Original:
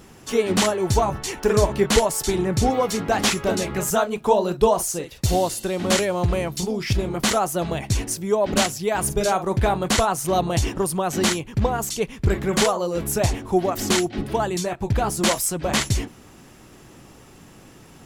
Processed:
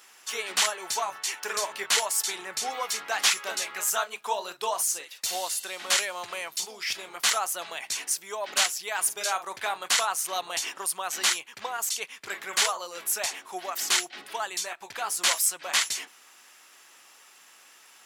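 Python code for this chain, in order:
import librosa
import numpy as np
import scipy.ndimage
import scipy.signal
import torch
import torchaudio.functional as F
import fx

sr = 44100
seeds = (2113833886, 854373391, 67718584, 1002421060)

y = scipy.signal.sosfilt(scipy.signal.butter(2, 1300.0, 'highpass', fs=sr, output='sos'), x)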